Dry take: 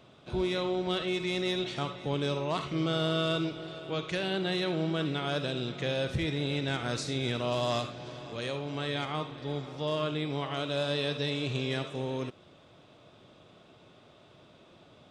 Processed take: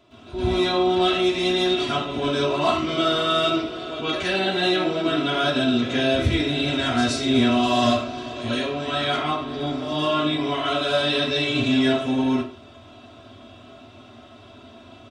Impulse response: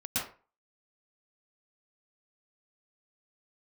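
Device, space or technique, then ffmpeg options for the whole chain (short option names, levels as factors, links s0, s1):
microphone above a desk: -filter_complex "[0:a]aecho=1:1:3:0.79[s0];[1:a]atrim=start_sample=2205[s1];[s0][s1]afir=irnorm=-1:irlink=0,volume=1.41"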